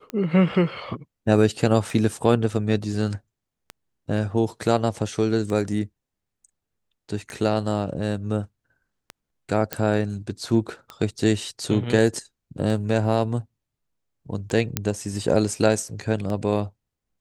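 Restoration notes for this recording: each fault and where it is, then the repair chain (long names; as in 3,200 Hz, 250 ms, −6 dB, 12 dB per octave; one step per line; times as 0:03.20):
scratch tick 33 1/3 rpm −18 dBFS
0:09.73: click −7 dBFS
0:14.77: click −5 dBFS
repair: click removal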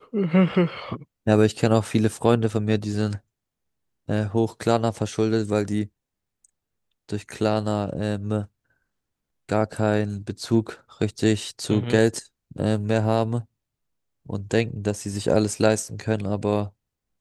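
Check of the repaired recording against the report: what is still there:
none of them is left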